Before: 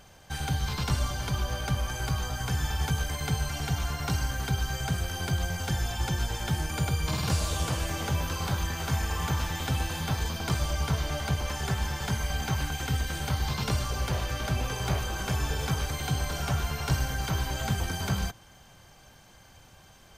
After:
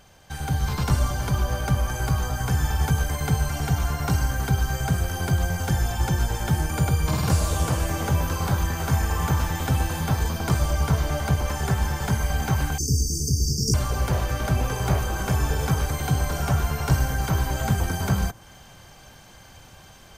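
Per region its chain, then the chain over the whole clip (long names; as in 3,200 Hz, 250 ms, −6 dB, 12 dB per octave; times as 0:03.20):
0:12.78–0:13.74: linear-phase brick-wall band-stop 470–4,500 Hz + parametric band 5,700 Hz +14.5 dB 0.94 octaves
whole clip: automatic gain control gain up to 6.5 dB; dynamic equaliser 3,500 Hz, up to −8 dB, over −45 dBFS, Q 0.77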